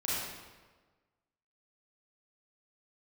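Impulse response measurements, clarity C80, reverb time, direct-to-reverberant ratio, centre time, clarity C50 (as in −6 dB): 0.0 dB, 1.4 s, −8.5 dB, 105 ms, −3.5 dB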